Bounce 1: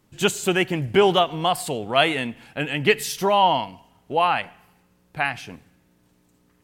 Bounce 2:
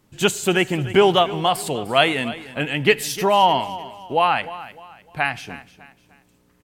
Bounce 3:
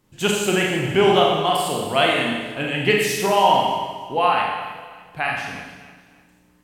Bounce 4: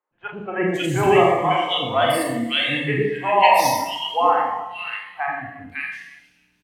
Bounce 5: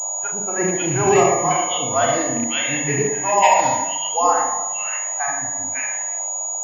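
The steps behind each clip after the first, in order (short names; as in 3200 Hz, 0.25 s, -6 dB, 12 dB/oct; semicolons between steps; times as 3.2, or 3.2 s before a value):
feedback echo 0.302 s, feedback 35%, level -16 dB; gain +2 dB
Schroeder reverb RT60 1.2 s, combs from 30 ms, DRR -1.5 dB; gain -3.5 dB
spectral noise reduction 14 dB; three bands offset in time mids, lows, highs 0.11/0.55 s, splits 530/1800 Hz; gain +3 dB
rattling part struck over -24 dBFS, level -23 dBFS; band noise 560–1000 Hz -39 dBFS; pulse-width modulation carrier 6800 Hz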